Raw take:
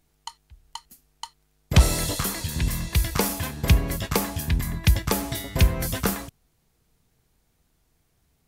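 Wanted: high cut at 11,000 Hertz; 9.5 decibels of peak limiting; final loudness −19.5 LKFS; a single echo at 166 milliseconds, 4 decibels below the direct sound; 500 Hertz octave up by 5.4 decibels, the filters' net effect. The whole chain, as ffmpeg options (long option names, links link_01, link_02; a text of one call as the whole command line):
ffmpeg -i in.wav -af "lowpass=11000,equalizer=frequency=500:width_type=o:gain=6.5,alimiter=limit=-14dB:level=0:latency=1,aecho=1:1:166:0.631,volume=6dB" out.wav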